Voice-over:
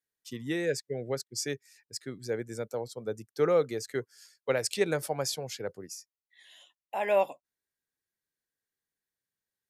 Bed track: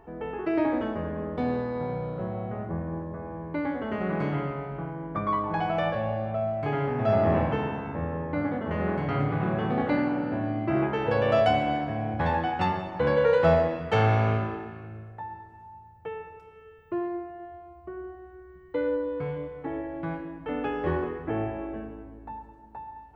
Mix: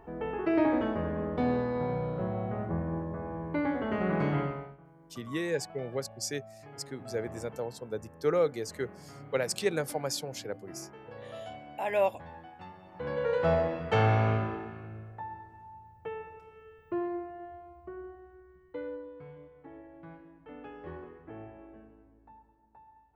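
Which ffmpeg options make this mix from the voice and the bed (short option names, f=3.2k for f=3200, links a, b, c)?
-filter_complex "[0:a]adelay=4850,volume=-1.5dB[a];[1:a]volume=18.5dB,afade=t=out:st=4.41:d=0.36:silence=0.0891251,afade=t=in:st=12.78:d=1.1:silence=0.112202,afade=t=out:st=17.53:d=1.62:silence=0.211349[b];[a][b]amix=inputs=2:normalize=0"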